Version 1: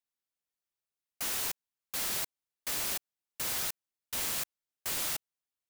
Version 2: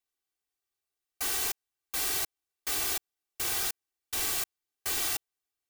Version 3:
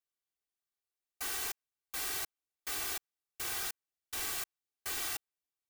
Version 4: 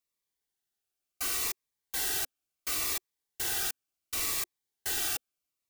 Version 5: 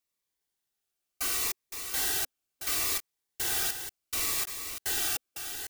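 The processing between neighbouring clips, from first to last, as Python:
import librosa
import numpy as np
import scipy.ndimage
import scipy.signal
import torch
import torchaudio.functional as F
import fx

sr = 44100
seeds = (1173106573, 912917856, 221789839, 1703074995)

y1 = x + 0.98 * np.pad(x, (int(2.6 * sr / 1000.0), 0))[:len(x)]
y2 = fx.dynamic_eq(y1, sr, hz=1500.0, q=0.99, threshold_db=-51.0, ratio=4.0, max_db=4)
y2 = y2 * librosa.db_to_amplitude(-7.0)
y3 = fx.notch_cascade(y2, sr, direction='falling', hz=0.71)
y3 = y3 * librosa.db_to_amplitude(6.0)
y4 = fx.reverse_delay(y3, sr, ms=405, wet_db=-8.0)
y4 = y4 * librosa.db_to_amplitude(1.5)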